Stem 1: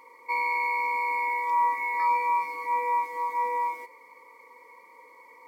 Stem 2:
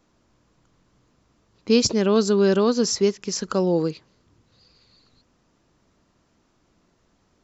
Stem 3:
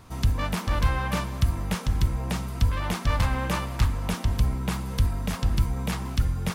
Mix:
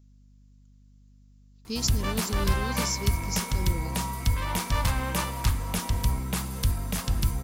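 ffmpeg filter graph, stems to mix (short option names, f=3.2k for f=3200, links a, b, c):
-filter_complex "[0:a]adelay=2450,volume=-14.5dB[a];[1:a]equalizer=f=840:t=o:w=2.3:g=-15,volume=-10.5dB[b];[2:a]adelay=1650,volume=-2.5dB[c];[a][b][c]amix=inputs=3:normalize=0,aeval=exprs='val(0)+0.002*(sin(2*PI*50*n/s)+sin(2*PI*2*50*n/s)/2+sin(2*PI*3*50*n/s)/3+sin(2*PI*4*50*n/s)/4+sin(2*PI*5*50*n/s)/5)':c=same,highshelf=f=5.2k:g=12"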